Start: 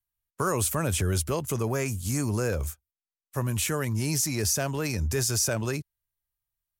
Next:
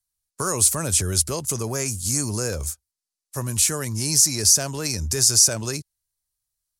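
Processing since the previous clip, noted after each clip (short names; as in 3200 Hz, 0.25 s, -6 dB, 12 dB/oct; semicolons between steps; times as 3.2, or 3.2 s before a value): band shelf 6700 Hz +11.5 dB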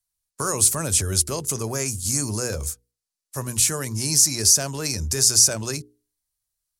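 notches 60/120/180/240/300/360/420/480 Hz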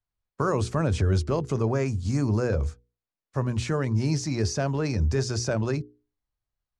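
tape spacing loss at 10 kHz 39 dB; gain +5 dB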